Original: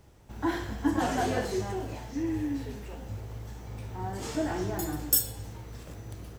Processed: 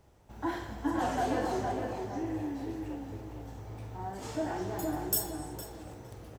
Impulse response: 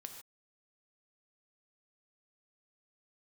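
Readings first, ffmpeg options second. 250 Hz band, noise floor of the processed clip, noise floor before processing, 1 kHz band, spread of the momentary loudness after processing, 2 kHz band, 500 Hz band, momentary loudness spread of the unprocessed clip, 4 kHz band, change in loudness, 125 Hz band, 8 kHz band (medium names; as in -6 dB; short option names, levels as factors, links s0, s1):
-3.0 dB, -53 dBFS, -48 dBFS, 0.0 dB, 14 LU, -4.0 dB, -1.5 dB, 18 LU, -5.5 dB, -4.0 dB, -5.0 dB, -6.0 dB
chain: -filter_complex "[0:a]equalizer=f=730:t=o:w=1.5:g=5,asplit=2[s0][s1];[s1]adelay=460,lowpass=f=2000:p=1,volume=0.668,asplit=2[s2][s3];[s3]adelay=460,lowpass=f=2000:p=1,volume=0.36,asplit=2[s4][s5];[s5]adelay=460,lowpass=f=2000:p=1,volume=0.36,asplit=2[s6][s7];[s7]adelay=460,lowpass=f=2000:p=1,volume=0.36,asplit=2[s8][s9];[s9]adelay=460,lowpass=f=2000:p=1,volume=0.36[s10];[s0][s2][s4][s6][s8][s10]amix=inputs=6:normalize=0,asplit=2[s11][s12];[1:a]atrim=start_sample=2205,asetrate=22932,aresample=44100,adelay=47[s13];[s12][s13]afir=irnorm=-1:irlink=0,volume=0.266[s14];[s11][s14]amix=inputs=2:normalize=0,volume=0.473"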